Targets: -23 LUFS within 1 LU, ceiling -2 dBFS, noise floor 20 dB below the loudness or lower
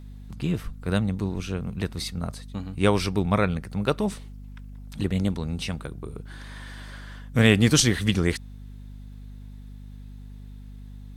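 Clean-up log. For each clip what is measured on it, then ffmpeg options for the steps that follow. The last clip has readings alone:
hum 50 Hz; harmonics up to 250 Hz; hum level -39 dBFS; loudness -25.0 LUFS; peak -6.5 dBFS; loudness target -23.0 LUFS
-> -af "bandreject=f=50:t=h:w=6,bandreject=f=100:t=h:w=6,bandreject=f=150:t=h:w=6,bandreject=f=200:t=h:w=6,bandreject=f=250:t=h:w=6"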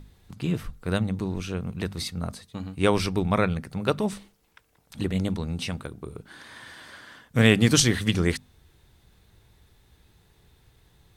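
hum none; loudness -25.5 LUFS; peak -5.5 dBFS; loudness target -23.0 LUFS
-> -af "volume=2.5dB"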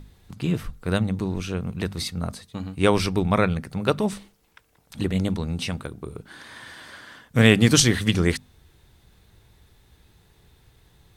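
loudness -23.0 LUFS; peak -3.0 dBFS; noise floor -60 dBFS

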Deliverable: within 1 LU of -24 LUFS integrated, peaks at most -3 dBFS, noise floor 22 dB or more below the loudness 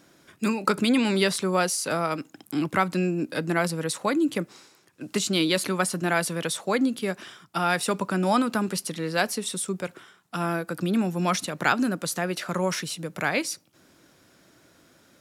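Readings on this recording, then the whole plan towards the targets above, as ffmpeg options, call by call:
loudness -26.0 LUFS; peak -8.0 dBFS; loudness target -24.0 LUFS
-> -af "volume=2dB"

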